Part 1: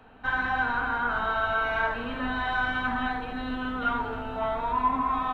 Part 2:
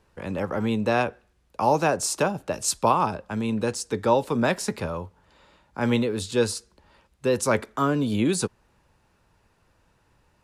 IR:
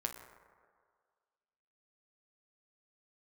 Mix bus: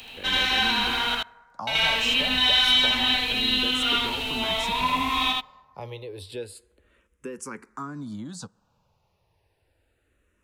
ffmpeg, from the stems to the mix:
-filter_complex "[0:a]aexciter=amount=13.3:drive=7.8:freq=2300,volume=1,asplit=3[s0][s1][s2];[s0]atrim=end=1.15,asetpts=PTS-STARTPTS,afade=t=out:st=1.146:d=0.004:c=hsin[s3];[s1]atrim=start=1.15:end=1.67,asetpts=PTS-STARTPTS,volume=0[s4];[s2]atrim=start=1.67,asetpts=PTS-STARTPTS,afade=t=in:d=0.004:c=hsin[s5];[s3][s4][s5]concat=n=3:v=0:a=1,asplit=3[s6][s7][s8];[s7]volume=0.188[s9];[s8]volume=0.668[s10];[1:a]acompressor=threshold=0.0316:ratio=3,asplit=2[s11][s12];[s12]afreqshift=-0.3[s13];[s11][s13]amix=inputs=2:normalize=1,volume=0.668,asplit=3[s14][s15][s16];[s15]volume=0.0944[s17];[s16]apad=whole_len=235148[s18];[s6][s18]sidechaincompress=threshold=0.01:ratio=8:attack=11:release=1380[s19];[2:a]atrim=start_sample=2205[s20];[s9][s17]amix=inputs=2:normalize=0[s21];[s21][s20]afir=irnorm=-1:irlink=0[s22];[s10]aecho=0:1:79:1[s23];[s19][s14][s22][s23]amix=inputs=4:normalize=0"

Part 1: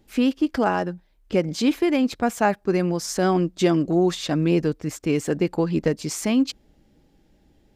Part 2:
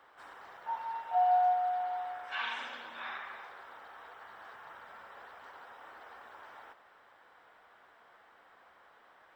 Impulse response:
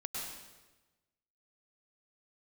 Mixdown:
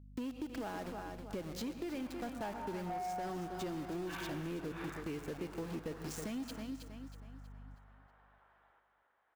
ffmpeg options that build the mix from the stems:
-filter_complex "[0:a]aeval=exprs='val(0)*gte(abs(val(0)),0.0398)':c=same,aeval=exprs='val(0)+0.00794*(sin(2*PI*50*n/s)+sin(2*PI*2*50*n/s)/2+sin(2*PI*3*50*n/s)/3+sin(2*PI*4*50*n/s)/4+sin(2*PI*5*50*n/s)/5)':c=same,volume=0.224,asplit=4[s0][s1][s2][s3];[s1]volume=0.282[s4];[s2]volume=0.316[s5];[1:a]lowpass=3100,adelay=1750,volume=0.596,asplit=3[s6][s7][s8];[s7]volume=0.112[s9];[s8]volume=0.2[s10];[s3]apad=whole_len=489851[s11];[s6][s11]sidechaingate=range=0.0224:threshold=0.00282:ratio=16:detection=peak[s12];[2:a]atrim=start_sample=2205[s13];[s4][s9]amix=inputs=2:normalize=0[s14];[s14][s13]afir=irnorm=-1:irlink=0[s15];[s5][s10]amix=inputs=2:normalize=0,aecho=0:1:320|640|960|1280|1600:1|0.38|0.144|0.0549|0.0209[s16];[s0][s12][s15][s16]amix=inputs=4:normalize=0,asoftclip=type=tanh:threshold=0.0447,acompressor=threshold=0.0126:ratio=6"

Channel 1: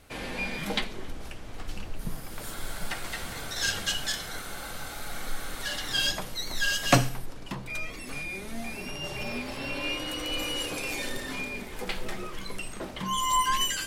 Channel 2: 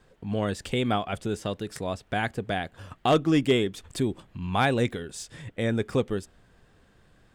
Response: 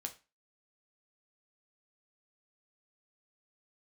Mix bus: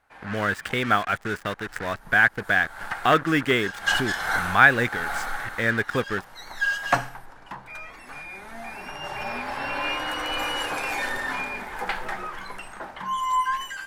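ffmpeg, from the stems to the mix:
-filter_complex "[0:a]dynaudnorm=f=330:g=11:m=4.47,equalizer=f=850:w=1.7:g=14.5,volume=0.422,afade=t=in:st=3.79:d=0.23:silence=0.237137,afade=t=out:st=5.09:d=0.4:silence=0.421697[s0];[1:a]acrusher=bits=5:mix=0:aa=0.5,equalizer=f=1500:t=o:w=1.6:g=5,volume=0.75,asplit=2[s1][s2];[s2]apad=whole_len=611596[s3];[s0][s3]sidechaincompress=threshold=0.0178:ratio=10:attack=27:release=315[s4];[s4][s1]amix=inputs=2:normalize=0,equalizer=f=1600:t=o:w=0.9:g=14"

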